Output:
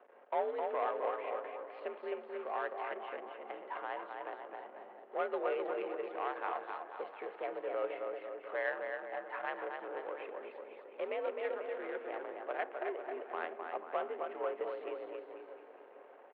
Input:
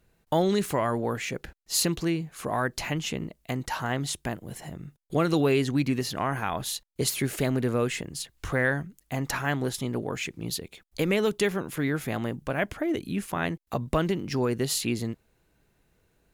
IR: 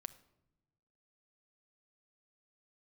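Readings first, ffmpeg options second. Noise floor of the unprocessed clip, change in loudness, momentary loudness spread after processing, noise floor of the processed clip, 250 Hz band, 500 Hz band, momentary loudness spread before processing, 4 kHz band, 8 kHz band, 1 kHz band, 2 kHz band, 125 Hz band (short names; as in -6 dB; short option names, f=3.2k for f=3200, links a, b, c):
-70 dBFS, -11.5 dB, 11 LU, -57 dBFS, -23.0 dB, -8.0 dB, 10 LU, -23.5 dB, under -40 dB, -5.5 dB, -11.0 dB, under -40 dB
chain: -filter_complex "[0:a]aeval=exprs='val(0)+0.5*0.0211*sgn(val(0))':c=same,aecho=1:1:260|494|704.6|894.1|1065:0.631|0.398|0.251|0.158|0.1[a];[1:a]atrim=start_sample=2205[b];[a][b]afir=irnorm=-1:irlink=0,adynamicsmooth=sensitivity=1:basefreq=810,highpass=f=400:t=q:w=0.5412,highpass=f=400:t=q:w=1.307,lowpass=f=3.1k:t=q:w=0.5176,lowpass=f=3.1k:t=q:w=0.7071,lowpass=f=3.1k:t=q:w=1.932,afreqshift=61,volume=-4.5dB"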